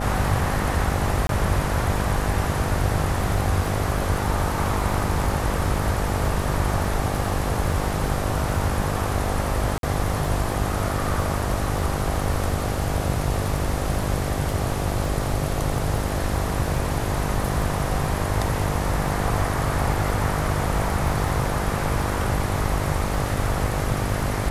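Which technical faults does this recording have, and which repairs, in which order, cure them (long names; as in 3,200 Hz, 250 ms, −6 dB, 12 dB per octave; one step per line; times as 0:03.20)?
mains buzz 50 Hz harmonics 16 −28 dBFS
surface crackle 27 per second −31 dBFS
0:01.27–0:01.29: drop-out 22 ms
0:09.78–0:09.83: drop-out 52 ms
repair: click removal
hum removal 50 Hz, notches 16
repair the gap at 0:01.27, 22 ms
repair the gap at 0:09.78, 52 ms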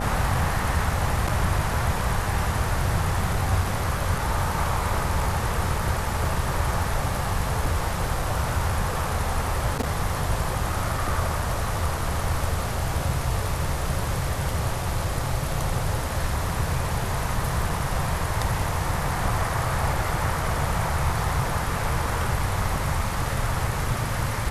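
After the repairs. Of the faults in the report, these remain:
none of them is left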